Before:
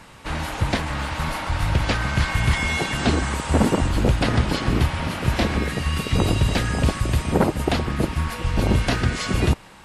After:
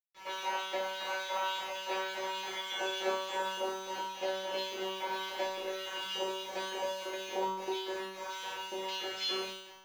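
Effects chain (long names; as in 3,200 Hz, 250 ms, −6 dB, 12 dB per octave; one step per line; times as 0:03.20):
parametric band 520 Hz +6.5 dB 2.8 octaves
downward compressor 4 to 1, threshold −21 dBFS, peak gain reduction 11.5 dB
auto-filter high-pass square 3.5 Hz 530–3,400 Hz
bit reduction 6 bits
tuned comb filter 190 Hz, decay 0.88 s, harmonics all, mix 100%
flutter between parallel walls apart 5.3 metres, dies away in 0.23 s
convolution reverb, pre-delay 3 ms, DRR 1 dB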